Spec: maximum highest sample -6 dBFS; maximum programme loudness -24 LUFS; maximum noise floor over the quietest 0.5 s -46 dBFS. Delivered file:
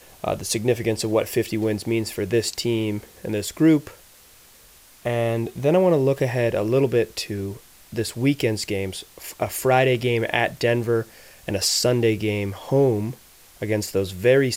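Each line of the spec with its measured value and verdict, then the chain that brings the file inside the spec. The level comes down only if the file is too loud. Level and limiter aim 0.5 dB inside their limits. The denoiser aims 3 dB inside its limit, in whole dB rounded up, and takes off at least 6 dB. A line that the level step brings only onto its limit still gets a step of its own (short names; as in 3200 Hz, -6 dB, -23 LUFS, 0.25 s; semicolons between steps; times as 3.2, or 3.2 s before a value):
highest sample -4.5 dBFS: fail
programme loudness -22.5 LUFS: fail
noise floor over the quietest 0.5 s -51 dBFS: OK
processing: gain -2 dB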